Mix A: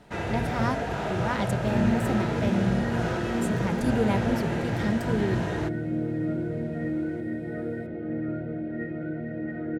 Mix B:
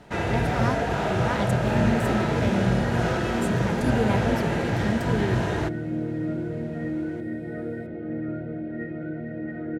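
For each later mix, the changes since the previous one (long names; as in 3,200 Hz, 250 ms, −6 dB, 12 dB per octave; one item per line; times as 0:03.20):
first sound +4.5 dB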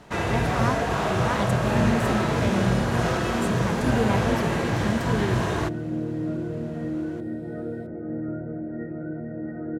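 first sound: add high-shelf EQ 4,700 Hz +7 dB
second sound: add low-pass filter 1,500 Hz 24 dB per octave
master: remove notch filter 1,100 Hz, Q 5.9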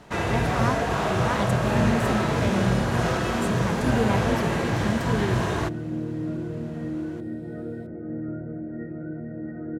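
second sound: add parametric band 790 Hz −4.5 dB 2 octaves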